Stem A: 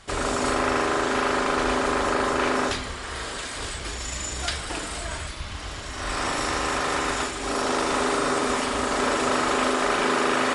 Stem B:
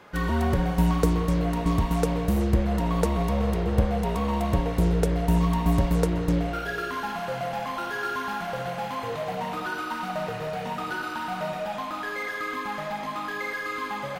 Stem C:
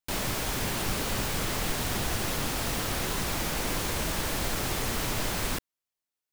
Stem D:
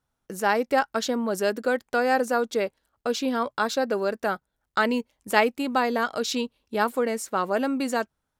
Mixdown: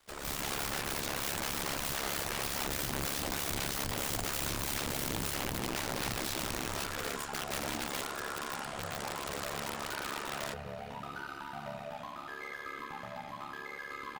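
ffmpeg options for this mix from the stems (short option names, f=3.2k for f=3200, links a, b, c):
-filter_complex "[0:a]lowshelf=f=210:g=-10.5,acrusher=bits=9:dc=4:mix=0:aa=0.000001,volume=-13dB[a];[1:a]highpass=f=53:w=0.5412,highpass=f=53:w=1.3066,alimiter=limit=-21dB:level=0:latency=1:release=214,adelay=250,volume=-8dB[b];[2:a]tremolo=f=3.2:d=0.86,volume=-4dB[c];[3:a]volume=-8.5dB[d];[c][d]amix=inputs=2:normalize=0,bandreject=f=60:t=h:w=6,bandreject=f=120:t=h:w=6,bandreject=f=180:t=h:w=6,bandreject=f=240:t=h:w=6,bandreject=f=300:t=h:w=6,bandreject=f=360:t=h:w=6,bandreject=f=420:t=h:w=6,bandreject=f=480:t=h:w=6,bandreject=f=540:t=h:w=6,alimiter=limit=-21dB:level=0:latency=1:release=480,volume=0dB[e];[a][b][e]amix=inputs=3:normalize=0,asubboost=boost=3.5:cutoff=120,aeval=exprs='(mod(23.7*val(0)+1,2)-1)/23.7':c=same,aeval=exprs='val(0)*sin(2*PI*35*n/s)':c=same"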